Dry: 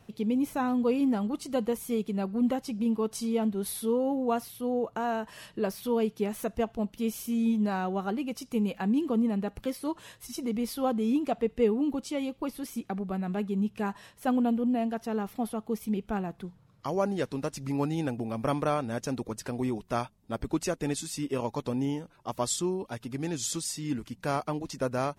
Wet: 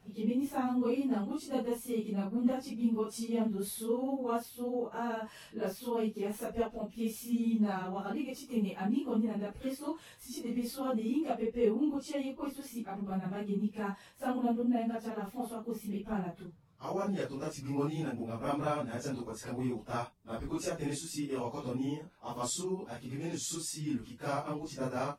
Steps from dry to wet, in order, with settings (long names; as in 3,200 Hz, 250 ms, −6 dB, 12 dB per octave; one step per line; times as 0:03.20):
random phases in long frames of 100 ms
level −5 dB